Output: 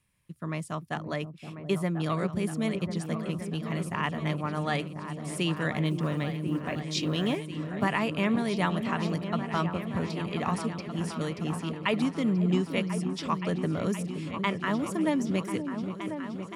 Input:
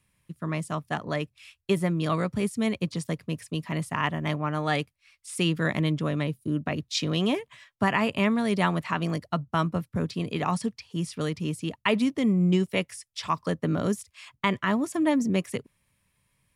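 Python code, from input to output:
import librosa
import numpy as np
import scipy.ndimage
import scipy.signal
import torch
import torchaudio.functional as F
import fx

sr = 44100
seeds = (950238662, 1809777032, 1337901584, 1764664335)

p1 = fx.quant_companded(x, sr, bits=8, at=(5.85, 7.86))
p2 = p1 + fx.echo_opening(p1, sr, ms=521, hz=400, octaves=2, feedback_pct=70, wet_db=-6, dry=0)
y = F.gain(torch.from_numpy(p2), -3.5).numpy()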